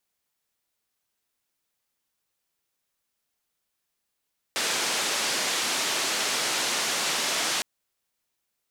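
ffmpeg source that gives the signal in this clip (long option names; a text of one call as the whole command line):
ffmpeg -f lavfi -i "anoisesrc=color=white:duration=3.06:sample_rate=44100:seed=1,highpass=frequency=250,lowpass=frequency=6600,volume=-17dB" out.wav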